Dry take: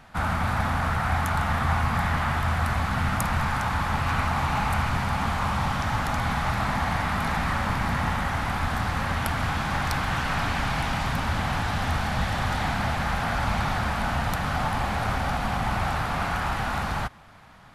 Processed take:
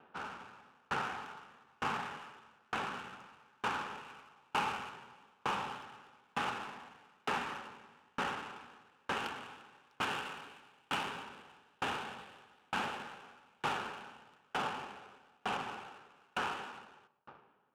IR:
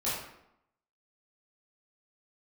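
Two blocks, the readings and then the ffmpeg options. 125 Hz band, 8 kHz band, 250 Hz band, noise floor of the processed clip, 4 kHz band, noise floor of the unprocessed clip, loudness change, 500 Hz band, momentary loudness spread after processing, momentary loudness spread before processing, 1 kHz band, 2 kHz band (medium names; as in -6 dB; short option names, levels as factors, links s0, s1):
-29.0 dB, -15.0 dB, -18.5 dB, -71 dBFS, -10.5 dB, -29 dBFS, -13.5 dB, -12.5 dB, 20 LU, 2 LU, -13.5 dB, -13.5 dB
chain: -filter_complex "[0:a]highpass=360,equalizer=f=410:t=q:w=4:g=10,equalizer=f=670:t=q:w=4:g=-10,equalizer=f=1100:t=q:w=4:g=-4,equalizer=f=2000:t=q:w=4:g=-9,equalizer=f=2800:t=q:w=4:g=8,equalizer=f=4400:t=q:w=4:g=-6,lowpass=f=6200:w=0.5412,lowpass=f=6200:w=1.3066,asplit=2[s0][s1];[1:a]atrim=start_sample=2205,adelay=104[s2];[s1][s2]afir=irnorm=-1:irlink=0,volume=0.188[s3];[s0][s3]amix=inputs=2:normalize=0,adynamicsmooth=sensitivity=6:basefreq=1300,aeval=exprs='val(0)*pow(10,-40*if(lt(mod(1.1*n/s,1),2*abs(1.1)/1000),1-mod(1.1*n/s,1)/(2*abs(1.1)/1000),(mod(1.1*n/s,1)-2*abs(1.1)/1000)/(1-2*abs(1.1)/1000))/20)':c=same,volume=0.891"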